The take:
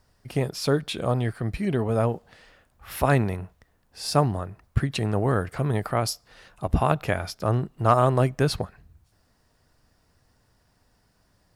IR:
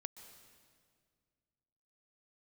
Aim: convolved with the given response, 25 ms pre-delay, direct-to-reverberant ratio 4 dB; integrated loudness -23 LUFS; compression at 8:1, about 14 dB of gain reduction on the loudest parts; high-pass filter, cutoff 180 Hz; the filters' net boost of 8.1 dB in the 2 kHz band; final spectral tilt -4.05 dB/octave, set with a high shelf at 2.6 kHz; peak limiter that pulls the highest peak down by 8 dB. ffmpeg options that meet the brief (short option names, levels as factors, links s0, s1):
-filter_complex "[0:a]highpass=180,equalizer=f=2000:t=o:g=7.5,highshelf=f=2600:g=7.5,acompressor=threshold=0.0447:ratio=8,alimiter=limit=0.0944:level=0:latency=1,asplit=2[s0][s1];[1:a]atrim=start_sample=2205,adelay=25[s2];[s1][s2]afir=irnorm=-1:irlink=0,volume=1[s3];[s0][s3]amix=inputs=2:normalize=0,volume=3.16"